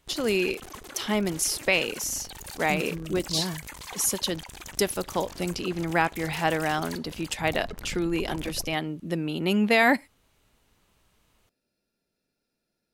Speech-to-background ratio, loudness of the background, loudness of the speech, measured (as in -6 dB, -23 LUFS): 14.0 dB, -41.0 LUFS, -27.0 LUFS